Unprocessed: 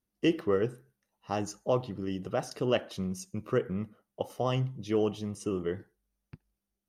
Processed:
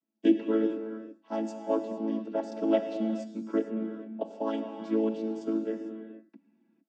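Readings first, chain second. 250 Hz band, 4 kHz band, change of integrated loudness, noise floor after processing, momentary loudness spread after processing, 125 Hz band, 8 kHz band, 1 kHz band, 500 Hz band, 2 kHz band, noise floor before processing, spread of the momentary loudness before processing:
+5.0 dB, -8.5 dB, +1.0 dB, -71 dBFS, 11 LU, under -10 dB, under -10 dB, -1.5 dB, 0.0 dB, -6.5 dB, under -85 dBFS, 8 LU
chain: vocoder on a held chord major triad, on A3; gated-style reverb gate 480 ms flat, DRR 6 dB; trim +1.5 dB

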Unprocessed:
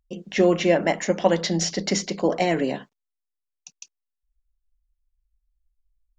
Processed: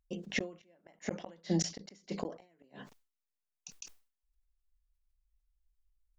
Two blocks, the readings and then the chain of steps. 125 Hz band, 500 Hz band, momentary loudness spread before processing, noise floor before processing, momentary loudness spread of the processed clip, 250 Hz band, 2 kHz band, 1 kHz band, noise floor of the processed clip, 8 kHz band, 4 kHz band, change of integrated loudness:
-11.5 dB, -21.5 dB, 7 LU, -83 dBFS, 21 LU, -14.5 dB, -14.5 dB, -22.5 dB, under -85 dBFS, -12.0 dB, -15.0 dB, -15.5 dB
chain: inverted gate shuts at -14 dBFS, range -42 dB; decay stretcher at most 140 dB/s; trim -5.5 dB

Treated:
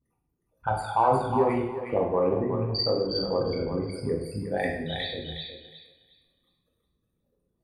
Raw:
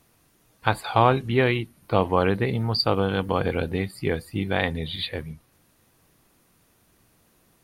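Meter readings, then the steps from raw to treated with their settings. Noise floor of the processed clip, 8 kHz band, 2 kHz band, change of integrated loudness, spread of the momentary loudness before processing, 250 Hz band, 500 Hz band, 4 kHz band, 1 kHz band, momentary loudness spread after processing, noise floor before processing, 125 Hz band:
-77 dBFS, no reading, -9.0 dB, -3.0 dB, 9 LU, -3.5 dB, -1.0 dB, -2.5 dB, -2.0 dB, 11 LU, -63 dBFS, -6.5 dB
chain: resonances exaggerated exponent 3; spectral noise reduction 11 dB; in parallel at -11 dB: saturation -13 dBFS, distortion -14 dB; on the sum: thinning echo 362 ms, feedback 26%, high-pass 870 Hz, level -3.5 dB; two-slope reverb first 0.75 s, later 2.2 s, from -25 dB, DRR -1.5 dB; trim -8.5 dB

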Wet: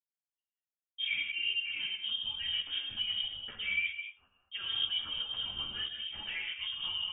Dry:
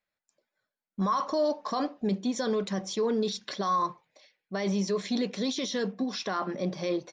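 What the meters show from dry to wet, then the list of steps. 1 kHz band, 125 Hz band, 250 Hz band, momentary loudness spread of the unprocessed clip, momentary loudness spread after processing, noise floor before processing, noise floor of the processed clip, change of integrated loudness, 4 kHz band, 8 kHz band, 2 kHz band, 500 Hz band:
-23.5 dB, -20.5 dB, -32.0 dB, 5 LU, 6 LU, under -85 dBFS, under -85 dBFS, -3.5 dB, +8.0 dB, under -40 dB, +6.0 dB, under -30 dB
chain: gate with hold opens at -44 dBFS; gated-style reverb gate 260 ms flat, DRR 1.5 dB; volume shaper 92 bpm, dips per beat 1, -8 dB, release 174 ms; frequency inversion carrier 3.4 kHz; three-phase chorus; trim -5.5 dB

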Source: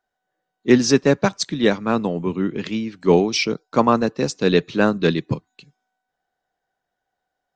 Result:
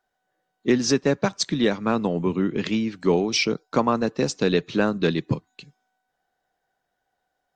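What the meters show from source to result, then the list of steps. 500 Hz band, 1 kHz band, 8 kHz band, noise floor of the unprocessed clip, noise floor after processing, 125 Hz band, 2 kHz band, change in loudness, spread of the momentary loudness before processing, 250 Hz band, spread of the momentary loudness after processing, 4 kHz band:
-4.0 dB, -4.5 dB, -2.0 dB, -81 dBFS, -78 dBFS, -3.0 dB, -3.5 dB, -3.5 dB, 9 LU, -3.5 dB, 4 LU, -2.0 dB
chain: compression 2.5:1, threshold -22 dBFS, peak gain reduction 10 dB; trim +2.5 dB; AAC 96 kbps 48 kHz

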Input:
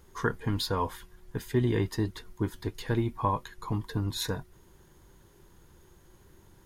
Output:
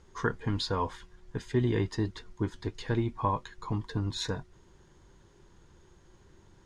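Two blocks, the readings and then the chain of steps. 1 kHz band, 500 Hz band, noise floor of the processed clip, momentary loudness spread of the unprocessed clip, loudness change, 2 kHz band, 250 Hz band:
-1.0 dB, -1.0 dB, -60 dBFS, 9 LU, -1.0 dB, -1.0 dB, -1.0 dB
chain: low-pass 7.5 kHz 24 dB/octave; trim -1 dB

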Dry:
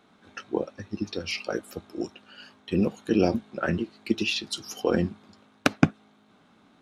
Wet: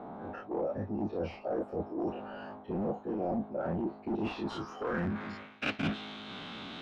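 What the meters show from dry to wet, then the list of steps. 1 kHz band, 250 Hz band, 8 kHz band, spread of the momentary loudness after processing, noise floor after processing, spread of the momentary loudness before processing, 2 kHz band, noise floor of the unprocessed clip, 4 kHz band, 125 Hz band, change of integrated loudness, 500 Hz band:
-3.0 dB, -7.0 dB, under -20 dB, 9 LU, -51 dBFS, 14 LU, -7.5 dB, -61 dBFS, -10.5 dB, -8.0 dB, -8.0 dB, -5.5 dB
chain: every event in the spectrogram widened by 60 ms; in parallel at -7.5 dB: integer overflow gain 17.5 dB; on the sum: treble shelf 4.6 kHz +9.5 dB; power-law waveshaper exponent 0.7; low-pass sweep 760 Hz -> 3.3 kHz, 4.18–5.93 s; reverse; compression 5:1, threshold -24 dBFS, peak gain reduction 17 dB; reverse; trim -8 dB

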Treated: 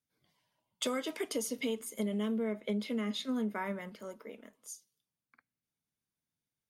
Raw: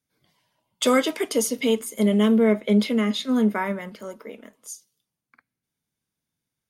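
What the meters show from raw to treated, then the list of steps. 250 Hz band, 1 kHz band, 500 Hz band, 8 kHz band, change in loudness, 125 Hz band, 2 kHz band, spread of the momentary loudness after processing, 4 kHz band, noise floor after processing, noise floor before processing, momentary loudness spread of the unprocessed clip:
-14.0 dB, -13.5 dB, -14.0 dB, -11.0 dB, -14.0 dB, no reading, -12.5 dB, 14 LU, -11.0 dB, under -85 dBFS, -85 dBFS, 21 LU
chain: compression 6:1, threshold -22 dBFS, peak gain reduction 8.5 dB; trim -8.5 dB

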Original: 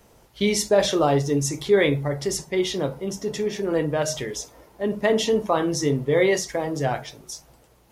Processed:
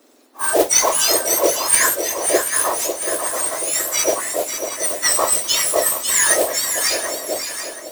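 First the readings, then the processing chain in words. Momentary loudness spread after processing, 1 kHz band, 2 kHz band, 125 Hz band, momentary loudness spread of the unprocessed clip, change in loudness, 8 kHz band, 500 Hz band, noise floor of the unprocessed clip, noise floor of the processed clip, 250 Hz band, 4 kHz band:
9 LU, +6.0 dB, +7.0 dB, under -15 dB, 12 LU, +6.5 dB, +16.5 dB, 0.0 dB, -56 dBFS, -37 dBFS, -6.5 dB, +8.0 dB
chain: spectrum inverted on a logarithmic axis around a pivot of 1.9 kHz; high-pass 400 Hz 6 dB/octave; on a send: shuffle delay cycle 730 ms, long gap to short 3:1, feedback 44%, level -8 dB; on the sum: modulation noise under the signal 11 dB; level rider gain up to 5 dB; trim +4 dB

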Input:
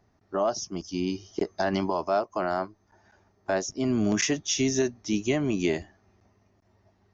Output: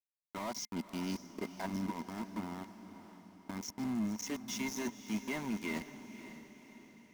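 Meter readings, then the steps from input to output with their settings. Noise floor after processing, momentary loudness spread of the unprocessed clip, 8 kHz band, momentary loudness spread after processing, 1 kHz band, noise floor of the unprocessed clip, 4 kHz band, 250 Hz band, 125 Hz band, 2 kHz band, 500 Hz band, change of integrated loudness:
under -85 dBFS, 8 LU, no reading, 16 LU, -12.5 dB, -67 dBFS, -12.0 dB, -9.5 dB, -11.0 dB, -9.5 dB, -18.5 dB, -12.0 dB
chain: time-frequency box 1.66–4.27 s, 360–5100 Hz -21 dB; level-controlled noise filter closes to 2.4 kHz, open at -21 dBFS; bass shelf 470 Hz -5.5 dB; harmonic-percussive split harmonic -7 dB; reverse; compression 16:1, threshold -39 dBFS, peak gain reduction 16 dB; reverse; small samples zeroed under -43 dBFS; small resonant body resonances 220/960/2100 Hz, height 15 dB, ringing for 55 ms; in parallel at -8 dB: wavefolder -35 dBFS; on the sum: echo that smears into a reverb 543 ms, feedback 49%, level -12 dB; trim -1.5 dB

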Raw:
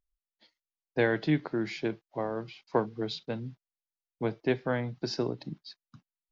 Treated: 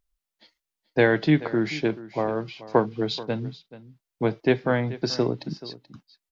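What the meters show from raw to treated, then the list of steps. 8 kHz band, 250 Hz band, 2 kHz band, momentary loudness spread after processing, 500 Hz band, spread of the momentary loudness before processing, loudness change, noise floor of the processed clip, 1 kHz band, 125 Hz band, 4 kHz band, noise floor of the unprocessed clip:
no reading, +7.0 dB, +7.0 dB, 11 LU, +7.0 dB, 11 LU, +7.0 dB, under -85 dBFS, +7.0 dB, +7.0 dB, +7.0 dB, under -85 dBFS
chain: delay 432 ms -17 dB; trim +7 dB

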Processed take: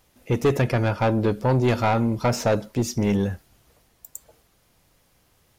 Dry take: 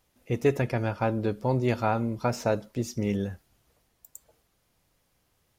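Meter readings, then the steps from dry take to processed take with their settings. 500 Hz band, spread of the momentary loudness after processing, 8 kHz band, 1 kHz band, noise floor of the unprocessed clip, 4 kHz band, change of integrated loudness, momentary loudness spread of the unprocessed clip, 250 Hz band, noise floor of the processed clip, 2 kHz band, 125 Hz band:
+4.5 dB, 19 LU, +8.0 dB, +5.0 dB, -72 dBFS, +8.5 dB, +5.5 dB, 7 LU, +5.5 dB, -63 dBFS, +5.5 dB, +6.5 dB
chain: saturation -22 dBFS, distortion -11 dB; trim +8.5 dB

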